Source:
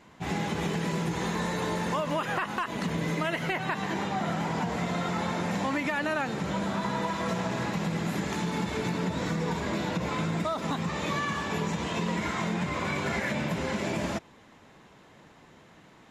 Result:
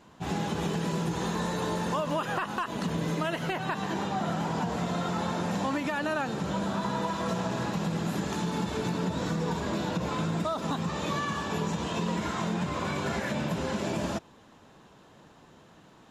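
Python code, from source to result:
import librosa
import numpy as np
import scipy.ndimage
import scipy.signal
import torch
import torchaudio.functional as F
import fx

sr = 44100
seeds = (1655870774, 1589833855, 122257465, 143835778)

y = fx.peak_eq(x, sr, hz=2100.0, db=-9.0, octaves=0.37)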